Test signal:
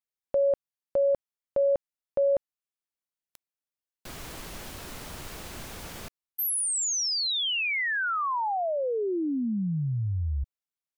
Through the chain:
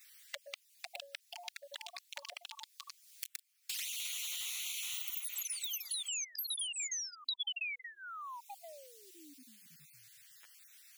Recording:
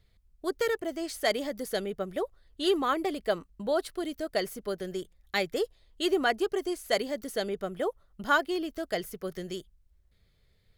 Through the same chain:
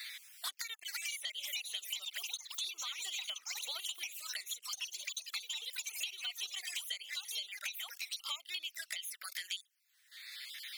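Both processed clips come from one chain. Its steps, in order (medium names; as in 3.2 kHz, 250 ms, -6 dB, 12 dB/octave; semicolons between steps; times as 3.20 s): random holes in the spectrogram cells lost 29%; dynamic bell 3 kHz, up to +4 dB, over -45 dBFS, Q 1.2; Chebyshev high-pass 1.8 kHz, order 3; ever faster or slower copies 571 ms, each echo +4 st, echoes 3; compression 5:1, threshold -45 dBFS; touch-sensitive flanger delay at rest 8 ms, full sweep at -46.5 dBFS; three bands compressed up and down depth 100%; trim +9.5 dB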